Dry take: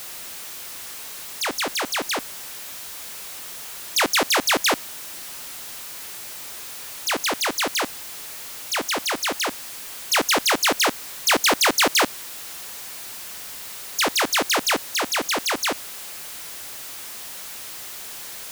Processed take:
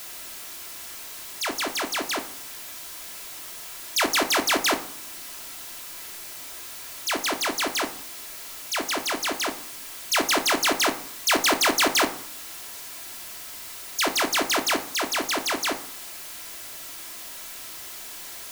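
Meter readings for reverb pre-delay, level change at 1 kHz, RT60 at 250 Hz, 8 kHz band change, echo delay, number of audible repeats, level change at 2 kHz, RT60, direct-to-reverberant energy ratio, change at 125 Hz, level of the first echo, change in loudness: 3 ms, -2.0 dB, 0.75 s, -2.5 dB, no echo, no echo, -2.5 dB, 0.55 s, 5.0 dB, -4.0 dB, no echo, -2.5 dB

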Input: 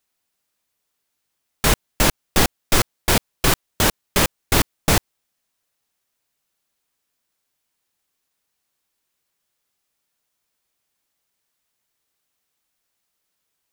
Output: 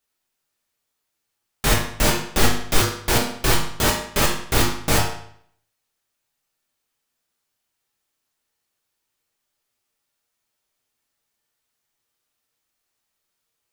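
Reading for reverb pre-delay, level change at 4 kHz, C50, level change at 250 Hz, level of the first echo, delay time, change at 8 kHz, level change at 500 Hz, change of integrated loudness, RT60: 8 ms, -1.0 dB, 4.5 dB, -1.0 dB, no echo, no echo, -1.5 dB, 0.0 dB, -1.0 dB, 0.65 s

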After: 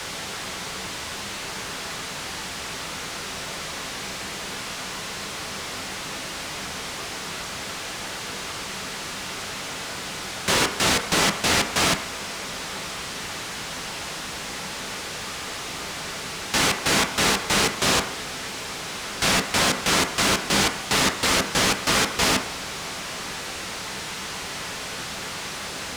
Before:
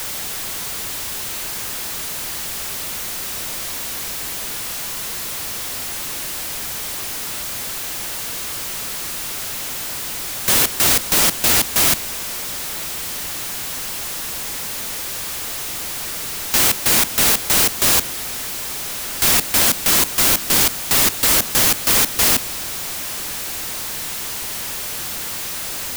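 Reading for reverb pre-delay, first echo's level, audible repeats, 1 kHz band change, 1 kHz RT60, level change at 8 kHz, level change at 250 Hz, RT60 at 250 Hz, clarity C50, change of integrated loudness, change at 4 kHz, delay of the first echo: 3 ms, no echo, no echo, +1.5 dB, 0.65 s, -8.0 dB, +1.0 dB, 0.40 s, 11.0 dB, -6.5 dB, -2.0 dB, no echo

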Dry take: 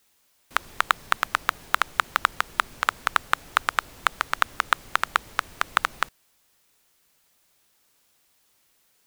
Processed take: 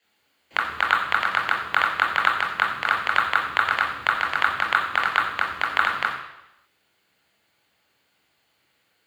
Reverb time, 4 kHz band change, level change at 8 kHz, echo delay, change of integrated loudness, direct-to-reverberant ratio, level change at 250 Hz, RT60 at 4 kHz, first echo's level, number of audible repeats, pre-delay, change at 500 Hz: 0.85 s, +2.0 dB, no reading, no echo, +4.0 dB, -3.0 dB, +4.0 dB, 0.90 s, no echo, no echo, 21 ms, +3.5 dB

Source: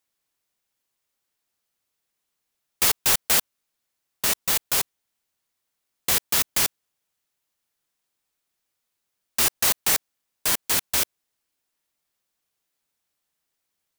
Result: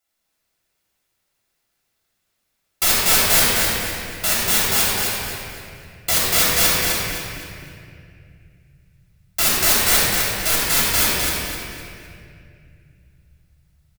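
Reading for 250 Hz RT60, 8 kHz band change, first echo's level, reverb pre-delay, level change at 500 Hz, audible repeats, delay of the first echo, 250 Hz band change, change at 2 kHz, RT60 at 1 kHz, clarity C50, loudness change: 3.6 s, +6.0 dB, -2.5 dB, 3 ms, +9.5 dB, 1, 257 ms, +10.5 dB, +9.5 dB, 2.1 s, -4.5 dB, +5.0 dB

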